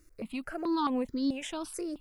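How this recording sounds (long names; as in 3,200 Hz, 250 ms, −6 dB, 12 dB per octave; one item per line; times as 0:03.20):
a quantiser's noise floor 12 bits, dither none
notches that jump at a steady rate 4.6 Hz 860–2,700 Hz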